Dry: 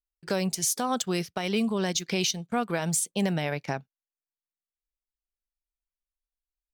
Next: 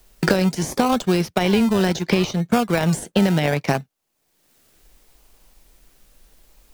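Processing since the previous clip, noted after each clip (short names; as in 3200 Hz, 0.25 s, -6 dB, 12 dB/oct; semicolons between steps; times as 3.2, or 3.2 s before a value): de-esser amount 80%; in parallel at -6.5 dB: decimation with a swept rate 31×, swing 60% 0.7 Hz; on the sum: three-band squash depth 100%; gain +7 dB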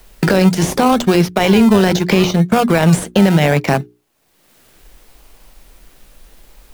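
in parallel at -7.5 dB: sample-rate reducer 9500 Hz; on the sum: notches 60/120/180/240/300/360/420 Hz; maximiser +8 dB; gain -1 dB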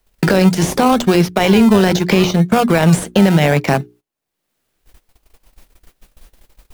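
gate -40 dBFS, range -20 dB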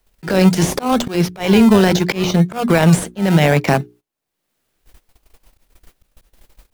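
auto swell 0.176 s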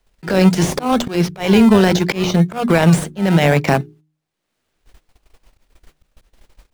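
median filter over 3 samples; de-hum 154.4 Hz, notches 2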